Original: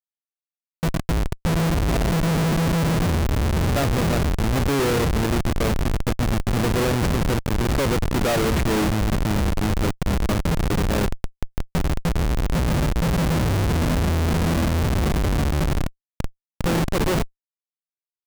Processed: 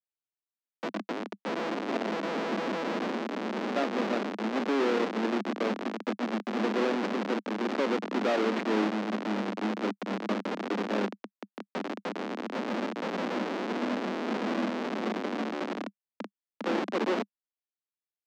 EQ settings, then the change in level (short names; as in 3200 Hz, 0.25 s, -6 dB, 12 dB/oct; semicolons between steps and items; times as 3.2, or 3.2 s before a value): steep high-pass 200 Hz 96 dB/oct; air absorption 180 m; -4.5 dB